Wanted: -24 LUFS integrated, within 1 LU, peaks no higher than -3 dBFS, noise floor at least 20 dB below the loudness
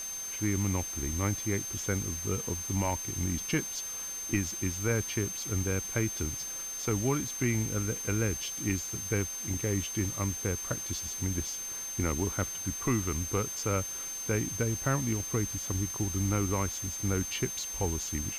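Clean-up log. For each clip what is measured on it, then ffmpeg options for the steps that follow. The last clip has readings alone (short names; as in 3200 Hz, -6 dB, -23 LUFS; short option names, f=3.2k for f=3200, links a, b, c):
steady tone 6300 Hz; tone level -36 dBFS; noise floor -38 dBFS; noise floor target -52 dBFS; loudness -31.5 LUFS; peak -17.0 dBFS; loudness target -24.0 LUFS
-> -af "bandreject=f=6.3k:w=30"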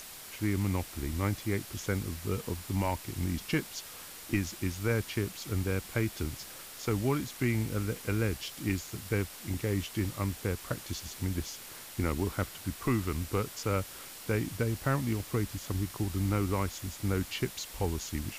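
steady tone none; noise floor -47 dBFS; noise floor target -54 dBFS
-> -af "afftdn=nr=7:nf=-47"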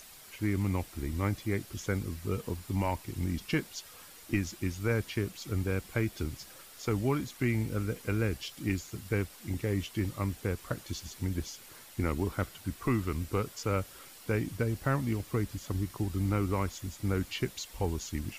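noise floor -52 dBFS; noise floor target -54 dBFS
-> -af "afftdn=nr=6:nf=-52"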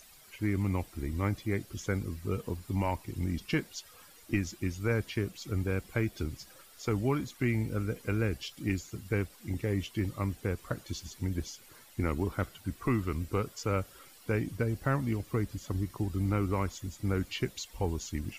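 noise floor -56 dBFS; loudness -33.5 LUFS; peak -18.5 dBFS; loudness target -24.0 LUFS
-> -af "volume=9.5dB"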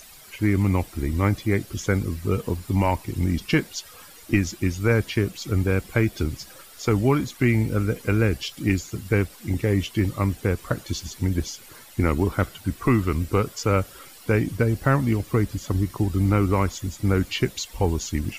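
loudness -24.0 LUFS; peak -9.0 dBFS; noise floor -47 dBFS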